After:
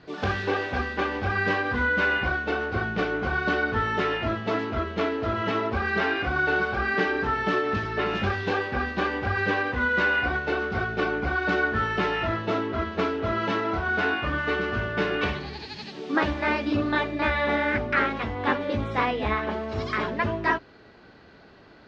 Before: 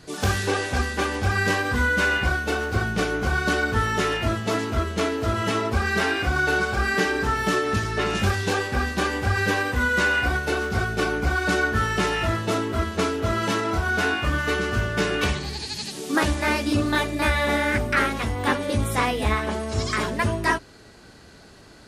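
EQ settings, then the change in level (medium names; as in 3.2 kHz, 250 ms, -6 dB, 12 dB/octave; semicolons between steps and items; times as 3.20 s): low-pass 5.2 kHz 12 dB/octave; distance through air 210 m; bass shelf 140 Hz -9.5 dB; 0.0 dB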